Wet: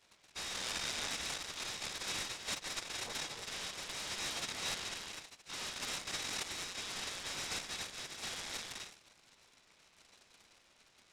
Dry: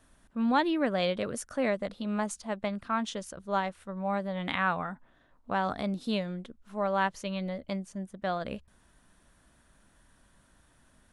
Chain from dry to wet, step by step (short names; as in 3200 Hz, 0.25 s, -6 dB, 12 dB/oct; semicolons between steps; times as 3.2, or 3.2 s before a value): spectral whitening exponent 0.6; dynamic EQ 210 Hz, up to +5 dB, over -46 dBFS, Q 2.2; limiter -21.5 dBFS, peak gain reduction 9 dB; envelope flanger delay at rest 11.3 ms, full sweep at -28 dBFS; soft clip -38.5 dBFS, distortion -7 dB; non-linear reverb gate 0.34 s rising, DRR 1.5 dB; inverted band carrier 4000 Hz; noise-modulated delay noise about 1500 Hz, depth 0.061 ms; gain -2 dB